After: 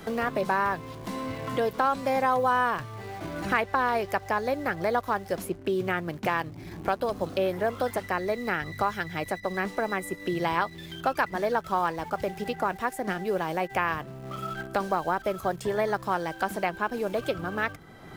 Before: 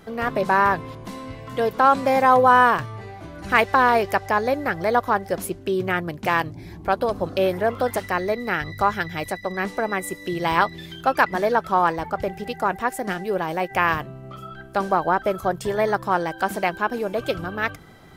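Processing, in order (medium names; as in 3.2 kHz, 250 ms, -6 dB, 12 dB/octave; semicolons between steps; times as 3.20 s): in parallel at -12 dB: bit crusher 6-bit; on the sum: three bands compressed up and down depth 70%; trim -8.5 dB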